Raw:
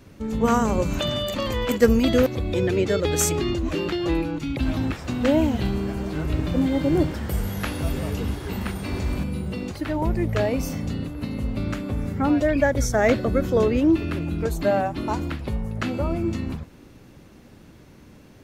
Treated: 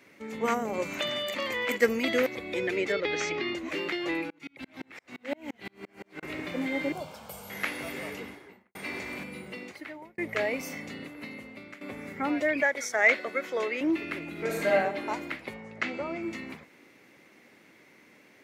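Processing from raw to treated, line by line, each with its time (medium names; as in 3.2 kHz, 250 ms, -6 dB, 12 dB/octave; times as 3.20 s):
0.54–0.74 s: time-frequency box 860–11000 Hz -9 dB
2.92–3.55 s: inverse Chebyshev low-pass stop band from 9.3 kHz
4.30–6.23 s: sawtooth tremolo in dB swelling 5.8 Hz, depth 38 dB
6.92–7.50 s: static phaser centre 790 Hz, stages 4
8.03–8.75 s: studio fade out
9.43–10.18 s: fade out
11.13–11.81 s: fade out, to -14.5 dB
12.62–13.81 s: frequency weighting A
14.31–14.72 s: reverb throw, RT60 1.2 s, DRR -3 dB
15.54–16.23 s: low-pass 7.2 kHz 24 dB/octave
whole clip: high-pass 310 Hz 12 dB/octave; peaking EQ 2.1 kHz +14 dB 0.48 oct; trim -6 dB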